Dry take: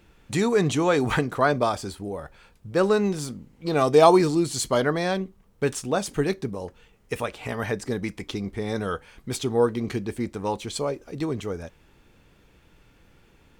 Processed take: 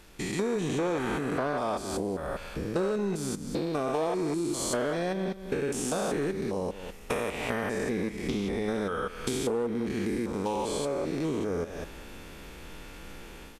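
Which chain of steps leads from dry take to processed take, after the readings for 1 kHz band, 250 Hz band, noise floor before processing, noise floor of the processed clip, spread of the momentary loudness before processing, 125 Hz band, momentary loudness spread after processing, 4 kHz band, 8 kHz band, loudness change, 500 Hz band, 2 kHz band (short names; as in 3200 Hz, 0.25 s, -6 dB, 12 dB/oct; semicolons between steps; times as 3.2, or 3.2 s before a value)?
-7.5 dB, -4.0 dB, -59 dBFS, -45 dBFS, 13 LU, -6.5 dB, 14 LU, -5.5 dB, -2.5 dB, -6.0 dB, -6.0 dB, -5.0 dB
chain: stepped spectrum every 0.2 s; AGC gain up to 11 dB; bit-crush 10-bit; on a send: echo 0.198 s -18 dB; on the sum: dynamic EQ 4700 Hz, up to -5 dB, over -43 dBFS, Q 1.8; in parallel at -10.5 dB: wavefolder -15 dBFS; on the sum: bell 110 Hz -10.5 dB 0.84 oct; compressor 6:1, threshold -30 dBFS, peak gain reduction 19 dB; gain +2 dB; Vorbis 64 kbps 32000 Hz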